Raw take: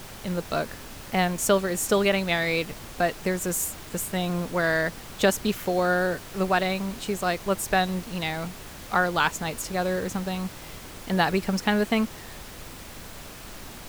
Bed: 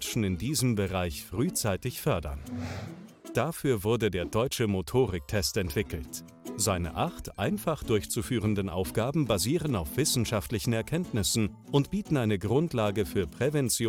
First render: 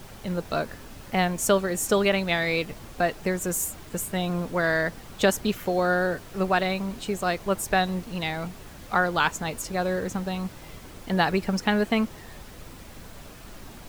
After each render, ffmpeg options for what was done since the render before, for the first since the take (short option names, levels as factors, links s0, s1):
-af "afftdn=nr=6:nf=-42"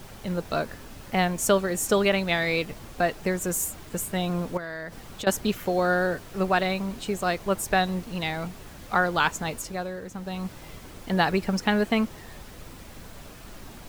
-filter_complex "[0:a]asettb=1/sr,asplit=3[s0][s1][s2];[s0]atrim=end=4.574[s3];[s1]atrim=start=4.57:end=5.27,asetpts=PTS-STARTPTS,afade=t=in:d=0.004:c=qsin,afade=t=out:st=0.696:d=0.004:c=qsin,acompressor=threshold=0.0282:ratio=12:attack=3.2:release=140:knee=1:detection=peak[s4];[s2]atrim=start=5.266[s5];[s3][s4]acrossfade=d=0.004:c1=hsin:c2=qsin[s6];[s6][s5]acrossfade=d=0.004:c1=qsin:c2=hsin,asplit=3[s7][s8][s9];[s7]atrim=end=9.92,asetpts=PTS-STARTPTS,afade=t=out:st=9.52:d=0.4:silence=0.375837[s10];[s8]atrim=start=9.92:end=10.12,asetpts=PTS-STARTPTS,volume=0.376[s11];[s9]atrim=start=10.12,asetpts=PTS-STARTPTS,afade=t=in:d=0.4:silence=0.375837[s12];[s10][s11][s12]concat=n=3:v=0:a=1"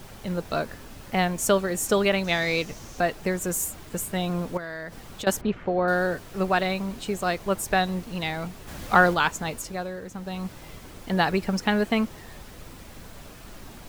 -filter_complex "[0:a]asettb=1/sr,asplit=3[s0][s1][s2];[s0]atrim=end=2.244[s3];[s1]atrim=start=2.24:end=3,asetpts=PTS-STARTPTS,afade=t=in:d=0.004:c=qsin,afade=t=out:st=0.756:d=0.004:c=qsin,equalizer=f=6100:t=o:w=0.5:g=11.5[s4];[s2]atrim=start=2.996[s5];[s3][s4]acrossfade=d=0.004:c1=hsin:c2=qsin[s6];[s6][s5]acrossfade=d=0.004:c1=qsin:c2=hsin,asettb=1/sr,asplit=3[s7][s8][s9];[s7]atrim=end=5.414[s10];[s8]atrim=start=5.41:end=5.88,asetpts=PTS-STARTPTS,afade=t=in:d=0.004:c=qsin,afade=t=out:st=0.466:d=0.004:c=qsin,lowpass=2000[s11];[s9]atrim=start=5.876[s12];[s10][s11]acrossfade=d=0.004:c1=hsin:c2=qsin[s13];[s13][s12]acrossfade=d=0.004:c1=qsin:c2=hsin,asplit=3[s14][s15][s16];[s14]afade=t=out:st=8.67:d=0.02[s17];[s15]acontrast=54,afade=t=in:st=8.67:d=0.02,afade=t=out:st=9.13:d=0.02[s18];[s16]afade=t=in:st=9.13:d=0.02[s19];[s17][s18][s19]amix=inputs=3:normalize=0"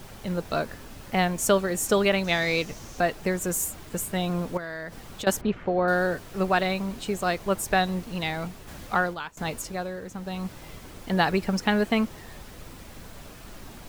-filter_complex "[0:a]asplit=2[s0][s1];[s0]atrim=end=9.37,asetpts=PTS-STARTPTS,afade=t=out:st=8.44:d=0.93:silence=0.0841395[s2];[s1]atrim=start=9.37,asetpts=PTS-STARTPTS,afade=t=in:d=0.004:c=hsin:silence=0.0841395[s3];[s2][s3]concat=n=2:v=0:a=1"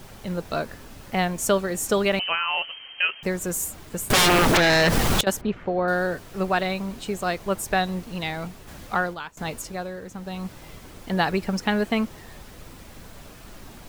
-filter_complex "[0:a]asettb=1/sr,asplit=3[s0][s1][s2];[s0]atrim=end=2.194[s3];[s1]atrim=start=2.19:end=3.23,asetpts=PTS-STARTPTS,afade=t=in:d=0.004:c=qsin,afade=t=out:st=1.036:d=0.004:c=qsin,lowpass=f=2700:t=q:w=0.5098,lowpass=f=2700:t=q:w=0.6013,lowpass=f=2700:t=q:w=0.9,lowpass=f=2700:t=q:w=2.563,afreqshift=-3200[s4];[s2]atrim=start=3.226[s5];[s3][s4]acrossfade=d=0.004:c1=hsin:c2=qsin[s6];[s6][s5]acrossfade=d=0.004:c1=qsin:c2=hsin,asettb=1/sr,asplit=3[s7][s8][s9];[s7]atrim=end=4.104[s10];[s8]atrim=start=4.1:end=5.21,asetpts=PTS-STARTPTS,afade=t=in:d=0.004:c=qsin,afade=t=out:st=1.106:d=0.004:c=qsin,aeval=exprs='0.2*sin(PI/2*10*val(0)/0.2)':c=same[s11];[s9]atrim=start=5.206[s12];[s10][s11]acrossfade=d=0.004:c1=hsin:c2=qsin[s13];[s13][s12]acrossfade=d=0.004:c1=qsin:c2=hsin"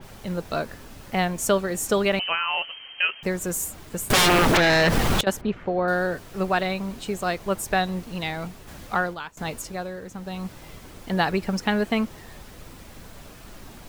-af "adynamicequalizer=threshold=0.02:dfrequency=4300:dqfactor=0.7:tfrequency=4300:tqfactor=0.7:attack=5:release=100:ratio=0.375:range=2.5:mode=cutabove:tftype=highshelf"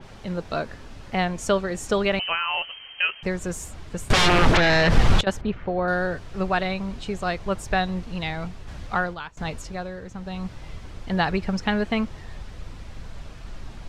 -af "lowpass=5700,asubboost=boost=2.5:cutoff=140"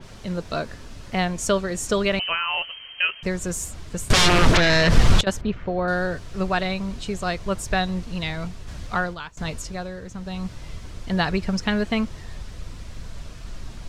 -af "bass=f=250:g=2,treble=f=4000:g=7,bandreject=f=810:w=12"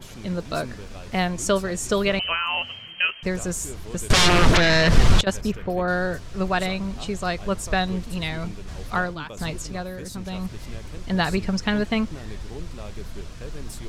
-filter_complex "[1:a]volume=0.224[s0];[0:a][s0]amix=inputs=2:normalize=0"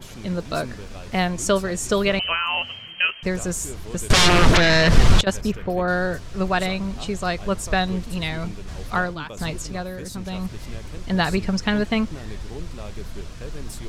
-af "volume=1.19"